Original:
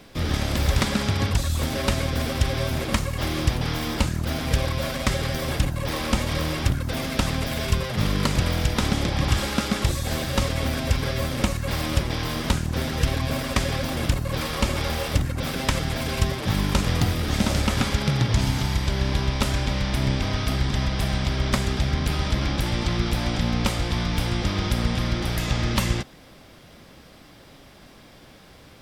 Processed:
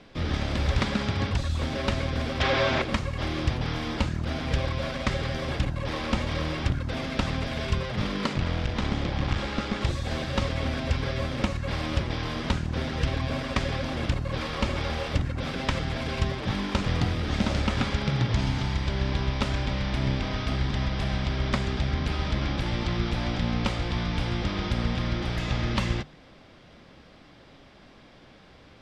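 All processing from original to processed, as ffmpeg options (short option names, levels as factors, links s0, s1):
-filter_complex "[0:a]asettb=1/sr,asplit=3[s0][s1][s2];[s0]atrim=end=2.404[s3];[s1]atrim=start=2.4:end=2.82,asetpts=PTS-STARTPTS,afade=t=in:d=0.004:c=qsin,afade=t=out:st=0.416:d=0.004:c=qsin,lowpass=f=7300:w=0.5412,lowpass=f=7300:w=1.3066,asplit=2[s4][s5];[s5]highpass=f=720:p=1,volume=10,asoftclip=type=tanh:threshold=0.398[s6];[s4][s6]amix=inputs=2:normalize=0,lowpass=f=3000:p=1,volume=0.501[s7];[s2]atrim=start=2.816[s8];[s3][s7]acrossfade=d=0.004:c1=hsin:c2=qsin[s9];[s9][s8]acrossfade=d=0.004:c1=qsin:c2=hsin,asettb=1/sr,asplit=3[s10][s11][s12];[s10]atrim=end=8.334[s13];[s11]atrim=start=8.33:end=9.81,asetpts=PTS-STARTPTS,afade=t=in:d=0.004:c=qsin,afade=t=out:st=1.476:d=0.004:c=qsin,highshelf=f=8600:g=-10,aeval=exprs='clip(val(0),-1,0.0631)':c=same[s14];[s12]atrim=start=9.806[s15];[s13][s14]acrossfade=d=0.004:c1=hsin:c2=qsin[s16];[s16][s15]acrossfade=d=0.004:c1=qsin:c2=hsin,lowpass=4400,bandreject=f=50:t=h:w=6,bandreject=f=100:t=h:w=6,bandreject=f=150:t=h:w=6,volume=0.708"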